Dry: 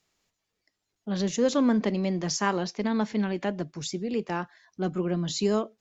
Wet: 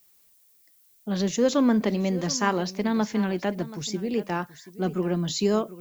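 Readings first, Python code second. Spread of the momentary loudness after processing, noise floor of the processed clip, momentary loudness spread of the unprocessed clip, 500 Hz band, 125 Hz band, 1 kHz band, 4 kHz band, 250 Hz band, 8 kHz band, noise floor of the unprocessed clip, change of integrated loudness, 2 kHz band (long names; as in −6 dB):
10 LU, −60 dBFS, 10 LU, +2.0 dB, +2.0 dB, +2.0 dB, +2.0 dB, +2.0 dB, can't be measured, −82 dBFS, +2.0 dB, +2.0 dB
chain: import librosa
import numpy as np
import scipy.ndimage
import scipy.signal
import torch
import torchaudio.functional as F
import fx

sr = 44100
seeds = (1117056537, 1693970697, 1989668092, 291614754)

y = x + 10.0 ** (-16.5 / 20.0) * np.pad(x, (int(730 * sr / 1000.0), 0))[:len(x)]
y = fx.dmg_noise_colour(y, sr, seeds[0], colour='violet', level_db=-62.0)
y = F.gain(torch.from_numpy(y), 2.0).numpy()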